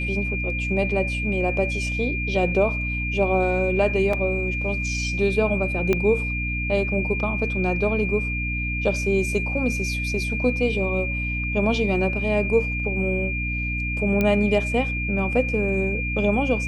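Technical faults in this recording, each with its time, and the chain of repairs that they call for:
hum 60 Hz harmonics 5 -28 dBFS
whine 2.4 kHz -27 dBFS
4.13 s: dropout 3.6 ms
5.93 s: pop -9 dBFS
14.21 s: pop -10 dBFS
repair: de-click; de-hum 60 Hz, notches 5; band-stop 2.4 kHz, Q 30; interpolate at 4.13 s, 3.6 ms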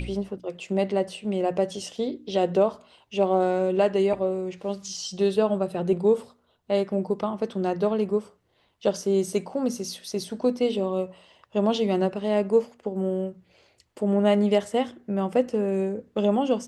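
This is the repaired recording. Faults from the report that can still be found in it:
5.93 s: pop

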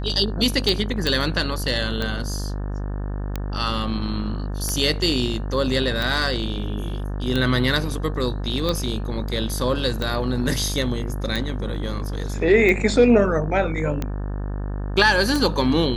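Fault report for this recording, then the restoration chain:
buzz 50 Hz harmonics 36 -27 dBFS
tick 45 rpm
1.07 s: pop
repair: de-click; de-hum 50 Hz, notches 36

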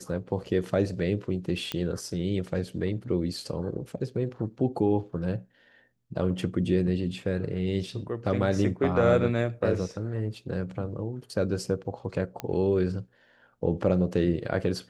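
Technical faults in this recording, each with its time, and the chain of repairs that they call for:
1.72 s: pop -15 dBFS
12.40 s: pop -17 dBFS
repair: de-click

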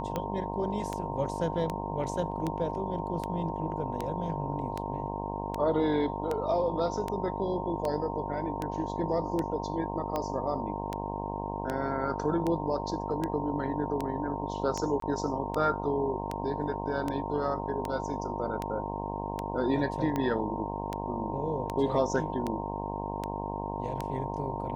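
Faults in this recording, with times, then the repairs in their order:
buzz 50 Hz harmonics 21 -36 dBFS
tick 78 rpm -18 dBFS
whine 920 Hz -37 dBFS
15.00–15.02 s: dropout 23 ms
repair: de-click; band-stop 920 Hz, Q 30; de-hum 50 Hz, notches 21; interpolate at 15.00 s, 23 ms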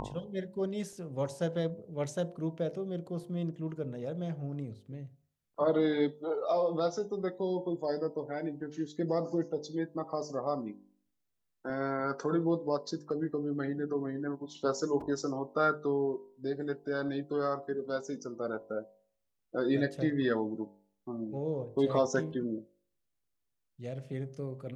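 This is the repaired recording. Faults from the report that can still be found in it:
nothing left

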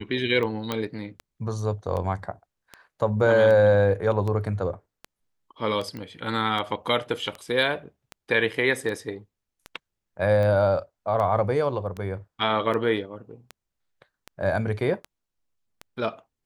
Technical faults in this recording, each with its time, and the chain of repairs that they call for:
tick 78 rpm -20 dBFS
0.72 s: pop -12 dBFS
5.97 s: pop -24 dBFS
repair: de-click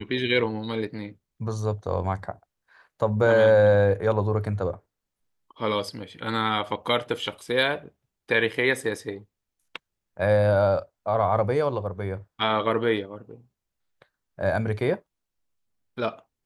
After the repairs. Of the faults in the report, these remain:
nothing left

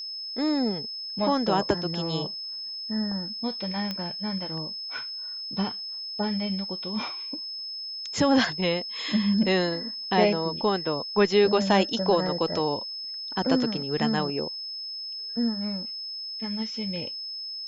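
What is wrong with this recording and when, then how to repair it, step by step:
whine 5.2 kHz -33 dBFS
3.91 s: pop -17 dBFS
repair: de-click; band-stop 5.2 kHz, Q 30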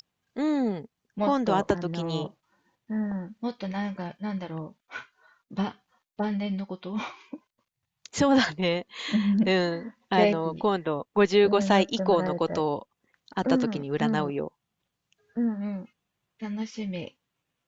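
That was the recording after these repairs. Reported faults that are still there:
nothing left

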